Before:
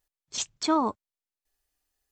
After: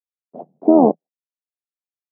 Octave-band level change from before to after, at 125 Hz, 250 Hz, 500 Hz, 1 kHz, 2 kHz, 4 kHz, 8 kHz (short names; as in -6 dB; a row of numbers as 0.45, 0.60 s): +17.0 dB, +13.5 dB, +16.5 dB, +6.0 dB, under -25 dB, under -40 dB, under -40 dB